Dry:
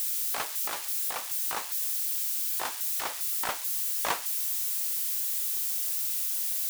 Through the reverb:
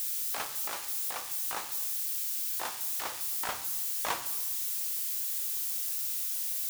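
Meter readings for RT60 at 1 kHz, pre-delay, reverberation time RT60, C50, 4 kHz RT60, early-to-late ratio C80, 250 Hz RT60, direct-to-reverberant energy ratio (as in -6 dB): 0.95 s, 3 ms, 1.1 s, 12.5 dB, 0.75 s, 15.0 dB, 1.6 s, 9.0 dB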